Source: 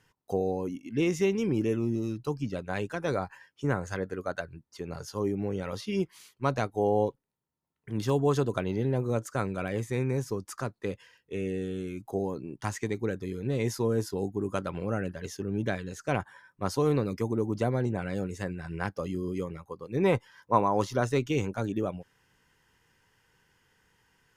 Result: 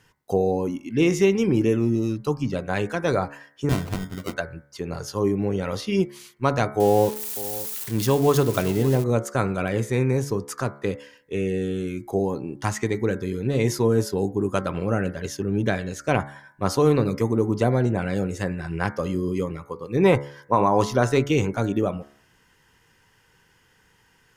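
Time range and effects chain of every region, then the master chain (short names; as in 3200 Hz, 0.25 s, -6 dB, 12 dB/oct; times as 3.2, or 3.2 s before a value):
3.69–4.34 EQ curve 220 Hz 0 dB, 640 Hz -29 dB, 1000 Hz +2 dB + sample-rate reducer 1700 Hz
6.8–9.04 switching spikes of -29.5 dBFS + echo 0.565 s -16.5 dB
whole clip: de-hum 71.05 Hz, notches 32; maximiser +13 dB; gain -5.5 dB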